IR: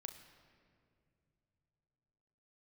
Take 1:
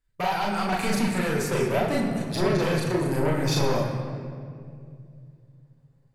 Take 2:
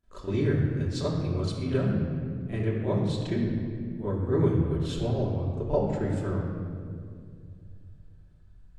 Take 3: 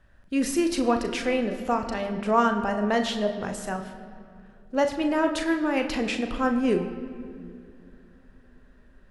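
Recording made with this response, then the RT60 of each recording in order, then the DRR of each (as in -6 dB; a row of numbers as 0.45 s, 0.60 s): 3; 2.3 s, 2.3 s, no single decay rate; -3.5 dB, -13.0 dB, 5.0 dB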